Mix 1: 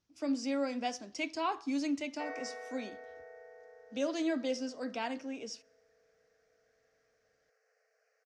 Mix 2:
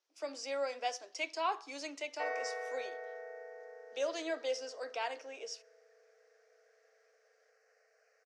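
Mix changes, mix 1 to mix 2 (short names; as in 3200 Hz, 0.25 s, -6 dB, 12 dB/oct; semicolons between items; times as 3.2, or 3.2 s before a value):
speech: add steep high-pass 400 Hz 36 dB/oct; background +4.5 dB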